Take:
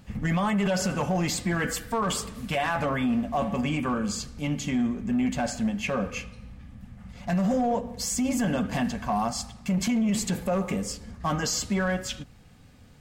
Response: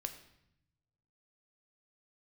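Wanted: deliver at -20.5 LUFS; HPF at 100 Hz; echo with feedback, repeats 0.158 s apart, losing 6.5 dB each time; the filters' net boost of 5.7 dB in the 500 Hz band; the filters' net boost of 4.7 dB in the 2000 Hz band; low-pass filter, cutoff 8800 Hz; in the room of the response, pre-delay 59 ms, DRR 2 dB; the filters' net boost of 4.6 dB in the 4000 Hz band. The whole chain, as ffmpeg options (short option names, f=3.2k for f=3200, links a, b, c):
-filter_complex "[0:a]highpass=100,lowpass=8.8k,equalizer=f=500:t=o:g=6.5,equalizer=f=2k:t=o:g=4.5,equalizer=f=4k:t=o:g=5,aecho=1:1:158|316|474|632|790|948:0.473|0.222|0.105|0.0491|0.0231|0.0109,asplit=2[a][b];[1:a]atrim=start_sample=2205,adelay=59[c];[b][c]afir=irnorm=-1:irlink=0,volume=-0.5dB[d];[a][d]amix=inputs=2:normalize=0,volume=1.5dB"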